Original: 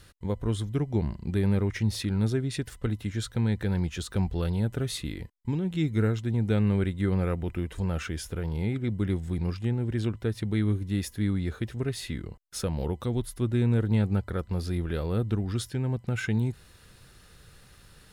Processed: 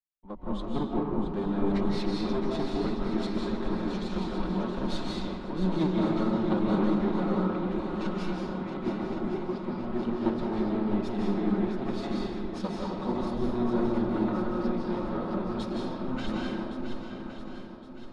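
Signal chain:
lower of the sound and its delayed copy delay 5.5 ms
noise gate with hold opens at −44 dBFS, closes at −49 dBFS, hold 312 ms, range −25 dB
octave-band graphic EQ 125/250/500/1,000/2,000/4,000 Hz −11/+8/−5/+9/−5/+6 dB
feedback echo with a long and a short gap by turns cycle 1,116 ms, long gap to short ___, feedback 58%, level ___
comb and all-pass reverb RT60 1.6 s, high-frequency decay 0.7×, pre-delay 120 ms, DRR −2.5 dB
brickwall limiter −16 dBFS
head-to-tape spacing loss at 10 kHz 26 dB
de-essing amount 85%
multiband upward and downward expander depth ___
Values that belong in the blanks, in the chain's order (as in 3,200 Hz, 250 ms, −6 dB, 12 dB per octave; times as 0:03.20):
1.5 to 1, −6 dB, 70%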